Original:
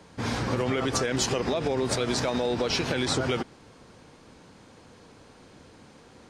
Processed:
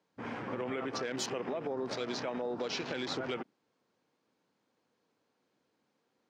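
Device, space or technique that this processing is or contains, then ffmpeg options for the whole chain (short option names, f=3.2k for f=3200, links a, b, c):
over-cleaned archive recording: -af "highpass=200,lowpass=7.5k,afwtdn=0.0126,volume=-8.5dB"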